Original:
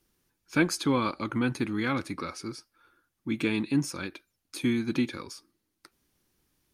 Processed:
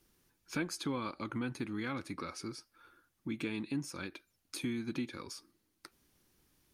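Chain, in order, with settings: compression 2:1, threshold -45 dBFS, peak gain reduction 14.5 dB; trim +1.5 dB

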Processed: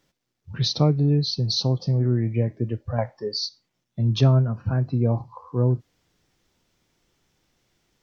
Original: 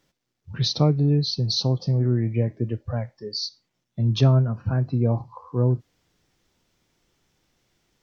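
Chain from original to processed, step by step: 2.98–3.46 s: peaking EQ 860 Hz +14 dB 1.8 oct

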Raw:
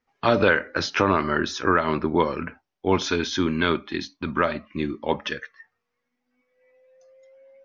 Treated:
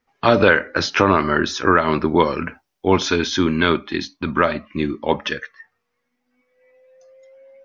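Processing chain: 1.92–2.87 s: treble shelf 4.7 kHz +8.5 dB; trim +5 dB

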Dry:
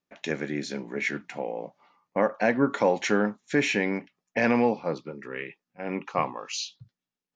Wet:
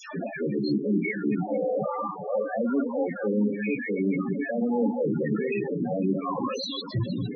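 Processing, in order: jump at every zero crossing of -25.5 dBFS; spectral gate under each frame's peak -25 dB strong; bass shelf 85 Hz -10.5 dB; reverse; compression 16:1, threshold -30 dBFS, peak gain reduction 15 dB; reverse; phase dispersion lows, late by 150 ms, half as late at 1.1 kHz; in parallel at +1 dB: peak limiter -25.5 dBFS, peak gain reduction 7 dB; on the sum: echo whose repeats swap between lows and highs 230 ms, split 950 Hz, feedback 81%, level -7 dB; short-mantissa float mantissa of 2-bit; loudest bins only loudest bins 8; bass shelf 350 Hz +6.5 dB

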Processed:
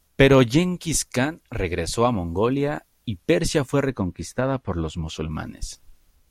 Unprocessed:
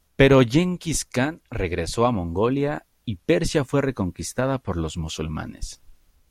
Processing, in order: treble shelf 5.2 kHz +4.5 dB, from 3.90 s -8.5 dB, from 5.31 s +2.5 dB

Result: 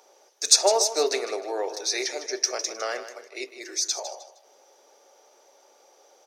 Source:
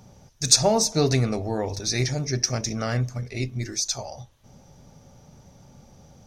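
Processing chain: 2.26–3.44 s: expander -29 dBFS; steep high-pass 360 Hz 48 dB/octave; feedback delay 155 ms, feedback 29%, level -12 dB

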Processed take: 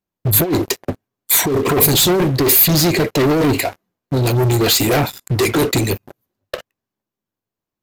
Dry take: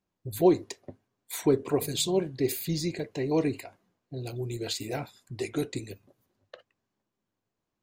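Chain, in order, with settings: compressor with a negative ratio -27 dBFS, ratio -0.5; waveshaping leveller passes 5; peaking EQ 13 kHz +12 dB 0.23 oct; trim +5 dB

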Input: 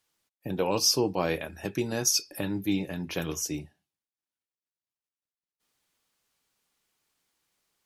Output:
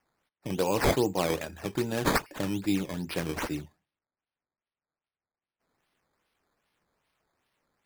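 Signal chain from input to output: decimation with a swept rate 11×, swing 100% 2.5 Hz

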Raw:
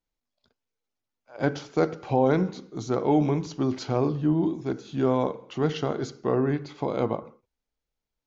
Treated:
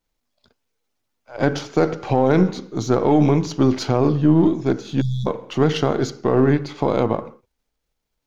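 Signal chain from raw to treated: partial rectifier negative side -3 dB; spectral selection erased 5.01–5.27 s, 230–3300 Hz; loudness maximiser +15 dB; trim -4.5 dB

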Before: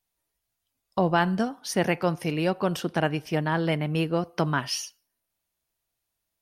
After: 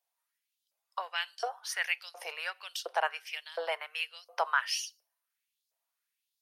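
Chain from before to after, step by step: LFO high-pass saw up 1.4 Hz 560–5000 Hz; steep high-pass 430 Hz 48 dB/octave; trim -5 dB

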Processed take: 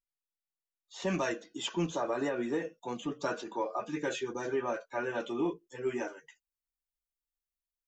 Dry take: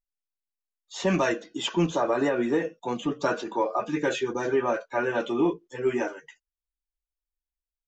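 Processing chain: treble shelf 6.9 kHz -4.5 dB, from 1.02 s +8.5 dB; trim -8 dB

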